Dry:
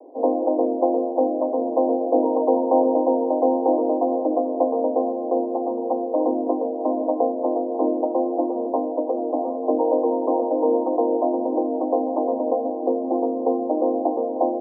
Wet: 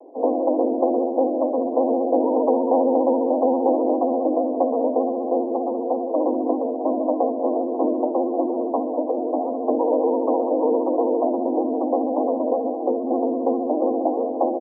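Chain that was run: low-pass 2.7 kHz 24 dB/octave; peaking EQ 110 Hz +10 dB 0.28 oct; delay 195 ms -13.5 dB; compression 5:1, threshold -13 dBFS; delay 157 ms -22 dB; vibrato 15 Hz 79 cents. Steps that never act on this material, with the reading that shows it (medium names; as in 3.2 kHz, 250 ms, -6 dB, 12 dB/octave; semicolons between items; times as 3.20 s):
low-pass 2.7 kHz: input has nothing above 1.1 kHz; peaking EQ 110 Hz: input has nothing below 230 Hz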